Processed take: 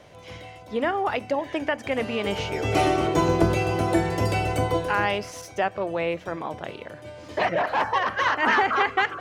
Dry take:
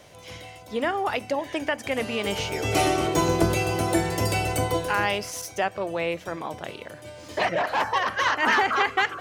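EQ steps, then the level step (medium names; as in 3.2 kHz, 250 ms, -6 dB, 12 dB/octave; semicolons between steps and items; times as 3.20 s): treble shelf 4.3 kHz -10 dB; treble shelf 8.9 kHz -4 dB; +1.5 dB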